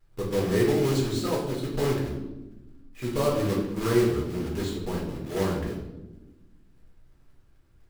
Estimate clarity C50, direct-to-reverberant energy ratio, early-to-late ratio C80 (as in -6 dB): 4.0 dB, -4.0 dB, 6.5 dB